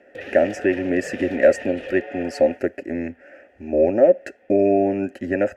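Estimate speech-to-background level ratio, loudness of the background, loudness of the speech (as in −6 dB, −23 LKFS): 14.5 dB, −35.5 LKFS, −21.0 LKFS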